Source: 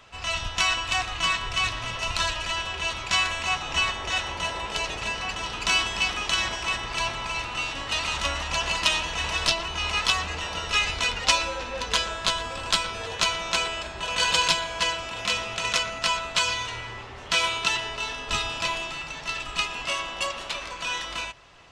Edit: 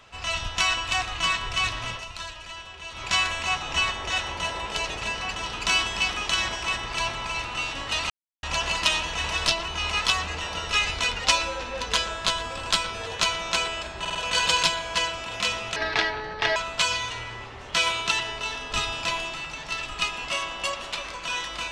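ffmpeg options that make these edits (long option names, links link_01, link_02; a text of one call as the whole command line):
ffmpeg -i in.wav -filter_complex "[0:a]asplit=10[link_01][link_02][link_03][link_04][link_05][link_06][link_07][link_08][link_09][link_10];[link_01]atrim=end=2.05,asetpts=PTS-STARTPTS,afade=type=out:start_time=1.91:duration=0.14:silence=0.298538[link_11];[link_02]atrim=start=2.05:end=2.91,asetpts=PTS-STARTPTS,volume=-10.5dB[link_12];[link_03]atrim=start=2.91:end=8.1,asetpts=PTS-STARTPTS,afade=type=in:duration=0.14:silence=0.298538,afade=type=out:start_time=5.186:duration=0.004:curve=hsin[link_13];[link_04]atrim=start=8.1:end=8.43,asetpts=PTS-STARTPTS,volume=0[link_14];[link_05]atrim=start=8.43:end=14.052,asetpts=PTS-STARTPTS,afade=type=in:duration=0.004:curve=hsin[link_15];[link_06]atrim=start=13.998:end=14.052[link_16];[link_07]atrim=start=13.998:end=14.052[link_17];[link_08]atrim=start=13.998:end=15.614[link_18];[link_09]atrim=start=15.61:end=16.13,asetpts=PTS-STARTPTS,asetrate=28665,aresample=44100[link_19];[link_10]atrim=start=16.126[link_20];[link_11][link_12][link_13][link_14][link_15]concat=n=5:v=0:a=1[link_21];[link_21][link_16]acrossfade=duration=0.004:curve1=hsin:curve2=hsin[link_22];[link_22][link_17]acrossfade=duration=0.004:curve1=hsin:curve2=hsin[link_23];[link_23][link_18]acrossfade=duration=0.004:curve1=hsin:curve2=hsin[link_24];[link_24][link_19]acrossfade=duration=0.004:curve1=hsin:curve2=hsin[link_25];[link_25][link_20]acrossfade=duration=0.004:curve1=hsin:curve2=hsin" out.wav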